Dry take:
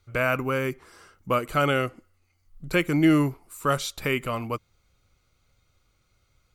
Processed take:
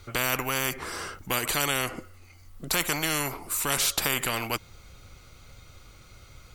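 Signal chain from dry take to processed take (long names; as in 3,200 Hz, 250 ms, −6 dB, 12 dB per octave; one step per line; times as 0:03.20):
every bin compressed towards the loudest bin 4 to 1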